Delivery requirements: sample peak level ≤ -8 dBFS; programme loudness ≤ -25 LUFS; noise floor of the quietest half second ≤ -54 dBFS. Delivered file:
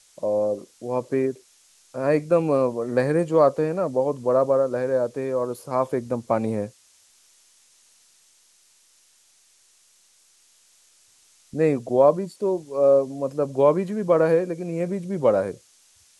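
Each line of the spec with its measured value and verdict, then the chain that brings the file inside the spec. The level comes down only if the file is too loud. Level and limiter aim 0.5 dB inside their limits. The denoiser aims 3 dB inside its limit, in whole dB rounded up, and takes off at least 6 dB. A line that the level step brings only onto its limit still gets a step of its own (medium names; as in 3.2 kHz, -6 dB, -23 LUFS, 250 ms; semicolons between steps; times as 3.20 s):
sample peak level -6.0 dBFS: fail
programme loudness -23.0 LUFS: fail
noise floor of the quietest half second -59 dBFS: pass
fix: trim -2.5 dB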